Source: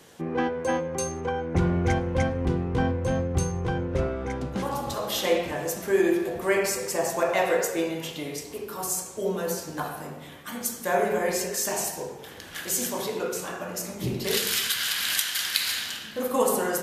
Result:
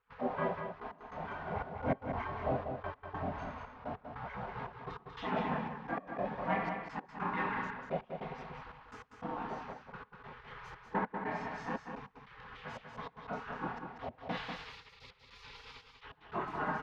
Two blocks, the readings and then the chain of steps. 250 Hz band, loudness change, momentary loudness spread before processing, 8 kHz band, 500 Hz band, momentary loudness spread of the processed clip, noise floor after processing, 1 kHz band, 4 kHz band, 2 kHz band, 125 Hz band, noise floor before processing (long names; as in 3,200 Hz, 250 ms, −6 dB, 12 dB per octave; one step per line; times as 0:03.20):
−12.5 dB, −13.0 dB, 9 LU, below −40 dB, −15.0 dB, 16 LU, −62 dBFS, −6.0 dB, −23.0 dB, −10.5 dB, −14.5 dB, −42 dBFS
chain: background noise pink −40 dBFS
comb filter 5.5 ms, depth 55%
leveller curve on the samples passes 3
multi-voice chorus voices 2, 0.46 Hz, delay 28 ms, depth 4.8 ms
slack as between gear wheels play −30 dBFS
gate pattern ".xxxxx..x." 148 BPM −24 dB
pair of resonant band-passes 450 Hz, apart 0.91 octaves
gate on every frequency bin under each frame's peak −20 dB weak
high-frequency loss of the air 260 metres
on a send: single-tap delay 193 ms −6.5 dB
on the sum: level +8.5 dB